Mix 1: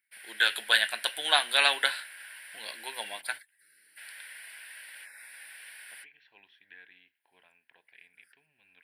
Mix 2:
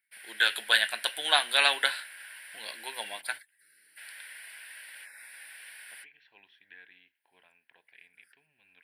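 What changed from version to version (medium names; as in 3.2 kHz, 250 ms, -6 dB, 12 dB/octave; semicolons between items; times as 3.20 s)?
no change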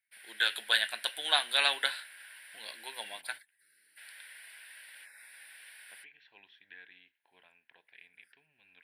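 first voice -5.0 dB; master: add peaking EQ 3.7 kHz +3.5 dB 0.3 oct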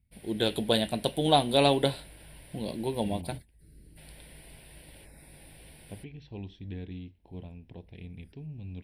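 second voice: remove distance through air 240 m; master: remove resonant high-pass 1.6 kHz, resonance Q 4.5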